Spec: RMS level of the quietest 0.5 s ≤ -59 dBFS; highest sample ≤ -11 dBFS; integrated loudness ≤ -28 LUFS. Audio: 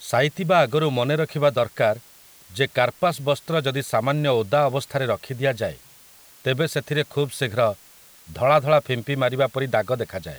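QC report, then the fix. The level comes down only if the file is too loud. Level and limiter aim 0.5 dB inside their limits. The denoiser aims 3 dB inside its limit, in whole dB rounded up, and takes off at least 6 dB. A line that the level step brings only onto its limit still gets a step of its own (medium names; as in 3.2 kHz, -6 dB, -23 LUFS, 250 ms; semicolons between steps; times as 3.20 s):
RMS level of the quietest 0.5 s -50 dBFS: fail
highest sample -4.0 dBFS: fail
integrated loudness -22.5 LUFS: fail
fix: noise reduction 6 dB, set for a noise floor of -50 dBFS; trim -6 dB; peak limiter -11.5 dBFS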